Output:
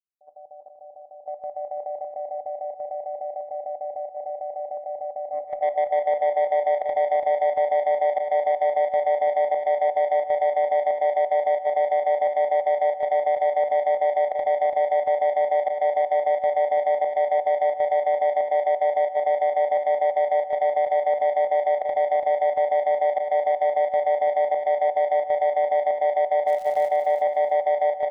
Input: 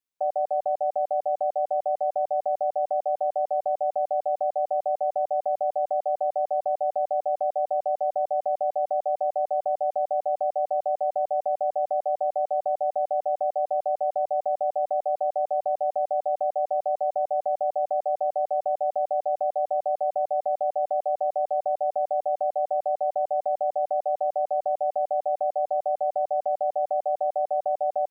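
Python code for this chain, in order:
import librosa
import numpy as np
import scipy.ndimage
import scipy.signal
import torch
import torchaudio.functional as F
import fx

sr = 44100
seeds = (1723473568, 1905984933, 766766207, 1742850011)

y = fx.fade_in_head(x, sr, length_s=6.81)
y = scipy.signal.sosfilt(scipy.signal.butter(12, 910.0, 'lowpass', fs=sr, output='sos'), y)
y = fx.level_steps(y, sr, step_db=13)
y = 10.0 ** (-23.5 / 20.0) * np.tanh(y / 10.0 ** (-23.5 / 20.0))
y = fx.volume_shaper(y, sr, bpm=88, per_beat=1, depth_db=-22, release_ms=70.0, shape='slow start')
y = fx.dmg_crackle(y, sr, seeds[0], per_s=240.0, level_db=-42.0, at=(26.46, 26.87), fade=0.02)
y = fx.echo_feedback(y, sr, ms=336, feedback_pct=29, wet_db=-6.5)
y = fx.room_shoebox(y, sr, seeds[1], volume_m3=570.0, walls='furnished', distance_m=0.53)
y = y * librosa.db_to_amplitude(8.5)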